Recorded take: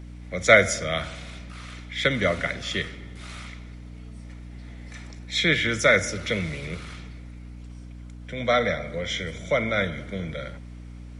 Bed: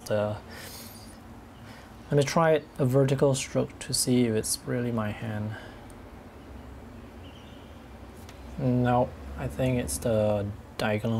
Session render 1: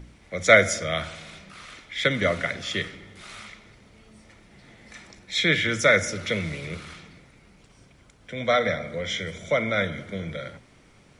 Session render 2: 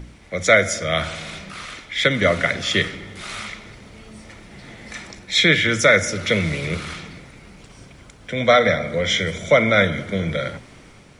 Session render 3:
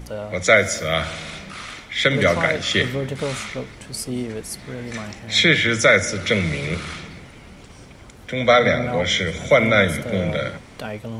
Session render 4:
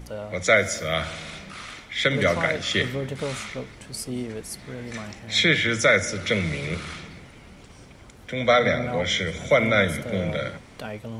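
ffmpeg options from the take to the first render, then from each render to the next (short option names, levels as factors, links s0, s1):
-af "bandreject=f=60:t=h:w=4,bandreject=f=120:t=h:w=4,bandreject=f=180:t=h:w=4,bandreject=f=240:t=h:w=4,bandreject=f=300:t=h:w=4"
-filter_complex "[0:a]asplit=2[s0][s1];[s1]alimiter=limit=0.251:level=0:latency=1:release=432,volume=1.26[s2];[s0][s2]amix=inputs=2:normalize=0,dynaudnorm=f=160:g=5:m=1.5"
-filter_complex "[1:a]volume=0.668[s0];[0:a][s0]amix=inputs=2:normalize=0"
-af "volume=0.631"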